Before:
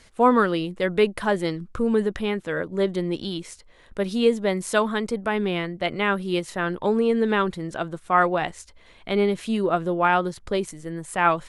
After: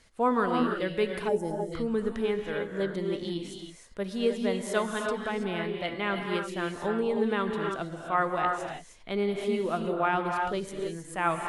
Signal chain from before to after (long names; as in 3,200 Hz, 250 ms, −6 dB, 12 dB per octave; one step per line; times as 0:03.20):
reverb whose tail is shaped and stops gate 350 ms rising, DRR 2.5 dB
gain on a spectral selection 0:01.28–0:01.72, 950–5,000 Hz −17 dB
level −8 dB